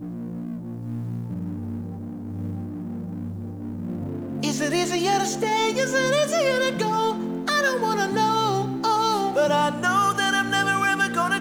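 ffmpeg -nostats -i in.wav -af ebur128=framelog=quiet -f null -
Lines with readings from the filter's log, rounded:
Integrated loudness:
  I:         -23.7 LUFS
  Threshold: -33.8 LUFS
Loudness range:
  LRA:        10.6 LU
  Threshold: -43.8 LUFS
  LRA low:   -32.1 LUFS
  LRA high:  -21.5 LUFS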